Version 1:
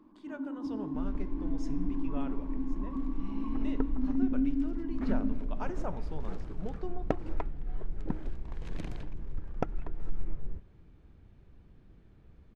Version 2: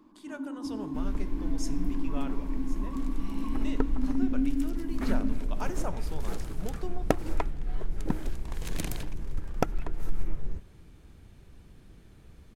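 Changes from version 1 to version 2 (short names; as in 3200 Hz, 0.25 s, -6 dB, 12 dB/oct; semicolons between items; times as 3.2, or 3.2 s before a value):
second sound +4.0 dB; master: remove tape spacing loss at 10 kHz 24 dB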